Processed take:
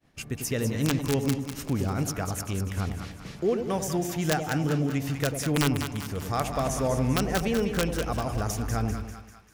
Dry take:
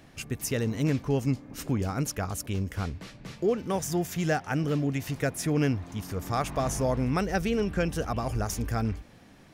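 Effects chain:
wrap-around overflow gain 15.5 dB
downward expander −45 dBFS
echo with a time of its own for lows and highs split 870 Hz, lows 95 ms, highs 197 ms, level −7 dB

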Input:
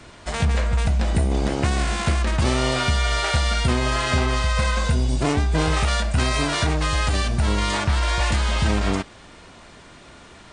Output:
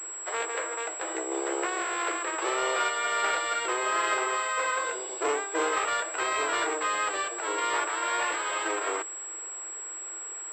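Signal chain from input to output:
Chebyshev high-pass with heavy ripple 320 Hz, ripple 6 dB
switching amplifier with a slow clock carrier 7,700 Hz

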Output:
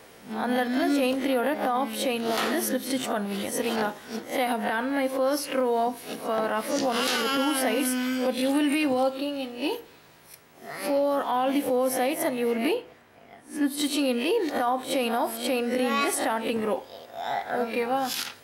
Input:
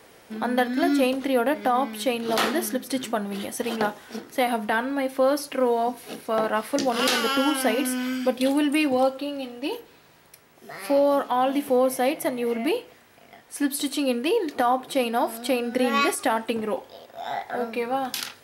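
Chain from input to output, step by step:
peak hold with a rise ahead of every peak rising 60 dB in 0.31 s
0:12.73–0:13.77: high-shelf EQ 4,000 Hz → 2,000 Hz −10.5 dB
brickwall limiter −16.5 dBFS, peak gain reduction 6.5 dB

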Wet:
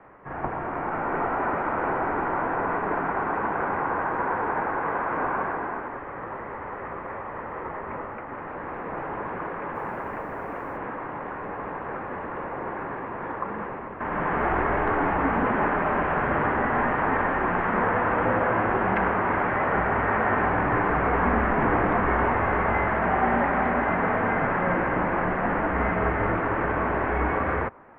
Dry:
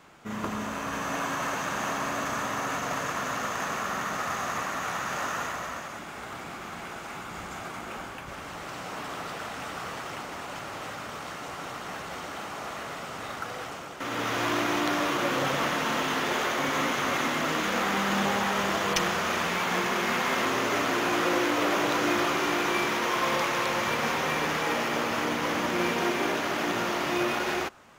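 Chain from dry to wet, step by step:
single-sideband voice off tune −290 Hz 390–2,200 Hz
0:09.75–0:10.77: bit-depth reduction 12 bits, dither none
level +5.5 dB

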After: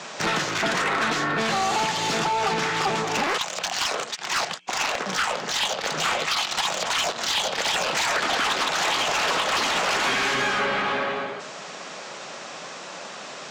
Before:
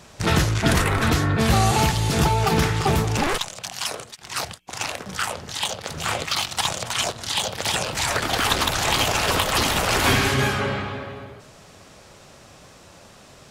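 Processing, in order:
elliptic band-pass filter 160–7,300 Hz
downward compressor 6 to 1, threshold −29 dBFS, peak gain reduction 12.5 dB
mid-hump overdrive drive 20 dB, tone 4,900 Hz, clips at −13.5 dBFS

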